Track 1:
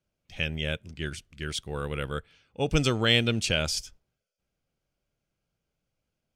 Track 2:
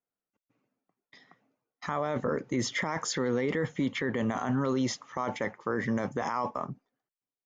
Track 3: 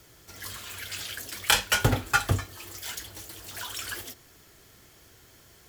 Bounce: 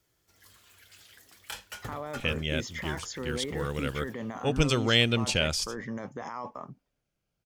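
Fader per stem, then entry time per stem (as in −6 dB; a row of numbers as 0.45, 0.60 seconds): −0.5, −7.0, −18.5 decibels; 1.85, 0.00, 0.00 seconds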